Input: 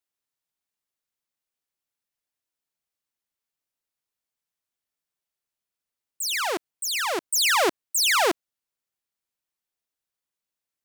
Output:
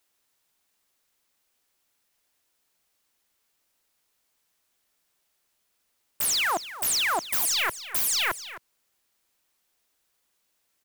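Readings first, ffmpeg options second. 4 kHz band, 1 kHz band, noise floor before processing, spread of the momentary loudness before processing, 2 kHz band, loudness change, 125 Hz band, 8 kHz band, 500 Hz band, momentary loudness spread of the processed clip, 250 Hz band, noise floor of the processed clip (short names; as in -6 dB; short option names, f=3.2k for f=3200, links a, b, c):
-2.5 dB, -4.0 dB, under -85 dBFS, 10 LU, -2.5 dB, -1.5 dB, n/a, -0.5 dB, -10.5 dB, 5 LU, -10.5 dB, -74 dBFS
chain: -filter_complex "[0:a]equalizer=f=130:t=o:w=1.1:g=-4.5,aeval=exprs='0.211*sin(PI/2*8.91*val(0)/0.211)':c=same,asplit=2[a][b];[b]aecho=0:1:261:0.188[c];[a][c]amix=inputs=2:normalize=0,volume=-8.5dB"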